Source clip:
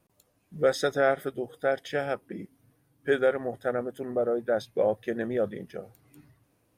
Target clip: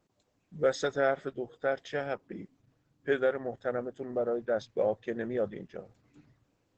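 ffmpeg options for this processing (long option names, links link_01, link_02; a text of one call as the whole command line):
ffmpeg -i in.wav -filter_complex "[0:a]asplit=3[link_01][link_02][link_03];[link_01]afade=type=out:start_time=1.35:duration=0.02[link_04];[link_02]adynamicequalizer=threshold=0.00316:dfrequency=1100:dqfactor=5.5:tfrequency=1100:tqfactor=5.5:attack=5:release=100:ratio=0.375:range=2:mode=boostabove:tftype=bell,afade=type=in:start_time=1.35:duration=0.02,afade=type=out:start_time=3.16:duration=0.02[link_05];[link_03]afade=type=in:start_time=3.16:duration=0.02[link_06];[link_04][link_05][link_06]amix=inputs=3:normalize=0,volume=-3.5dB" -ar 48000 -c:a libopus -b:a 12k out.opus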